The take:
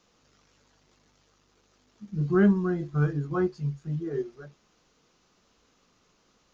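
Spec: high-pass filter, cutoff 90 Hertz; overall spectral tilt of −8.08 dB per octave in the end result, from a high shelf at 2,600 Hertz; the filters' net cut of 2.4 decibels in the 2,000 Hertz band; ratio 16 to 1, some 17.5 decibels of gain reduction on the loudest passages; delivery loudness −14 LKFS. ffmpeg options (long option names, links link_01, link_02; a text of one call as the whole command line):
ffmpeg -i in.wav -af "highpass=90,equalizer=frequency=2000:width_type=o:gain=-6.5,highshelf=frequency=2600:gain=7,acompressor=threshold=-34dB:ratio=16,volume=25.5dB" out.wav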